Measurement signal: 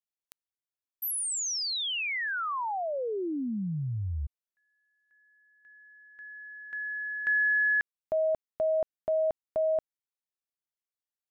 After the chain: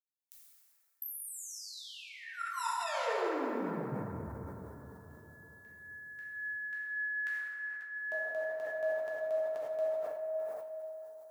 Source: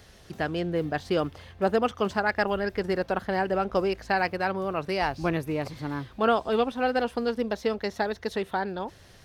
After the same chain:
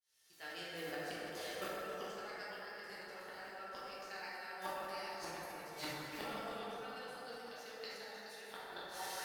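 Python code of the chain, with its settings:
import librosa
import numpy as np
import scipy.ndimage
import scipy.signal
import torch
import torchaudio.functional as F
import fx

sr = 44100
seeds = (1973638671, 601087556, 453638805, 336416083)

p1 = fx.fade_in_head(x, sr, length_s=2.59)
p2 = np.diff(p1, prepend=0.0)
p3 = fx.comb_fb(p2, sr, f0_hz=450.0, decay_s=0.18, harmonics='all', damping=0.2, mix_pct=70)
p4 = p3 + fx.echo_stepped(p3, sr, ms=210, hz=530.0, octaves=0.7, feedback_pct=70, wet_db=-9.5, dry=0)
p5 = fx.gate_flip(p4, sr, shuts_db=-49.0, range_db=-26)
p6 = fx.low_shelf(p5, sr, hz=110.0, db=6.5)
p7 = fx.rider(p6, sr, range_db=4, speed_s=0.5)
p8 = fx.rev_plate(p7, sr, seeds[0], rt60_s=4.2, hf_ratio=0.35, predelay_ms=0, drr_db=-9.0)
p9 = fx.sustainer(p8, sr, db_per_s=35.0)
y = p9 * librosa.db_to_amplitude(16.5)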